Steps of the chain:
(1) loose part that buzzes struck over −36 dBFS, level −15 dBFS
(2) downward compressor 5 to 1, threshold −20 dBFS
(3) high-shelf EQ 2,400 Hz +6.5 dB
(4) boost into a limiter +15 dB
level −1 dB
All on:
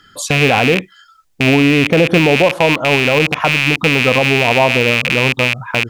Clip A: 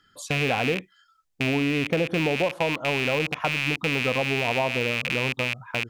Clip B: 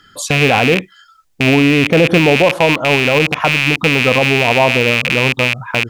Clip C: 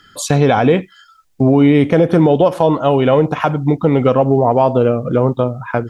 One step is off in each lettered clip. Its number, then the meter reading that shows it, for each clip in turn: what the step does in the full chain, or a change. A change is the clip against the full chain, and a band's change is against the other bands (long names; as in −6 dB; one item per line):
4, change in crest factor +3.0 dB
2, average gain reduction 2.0 dB
1, 2 kHz band −16.5 dB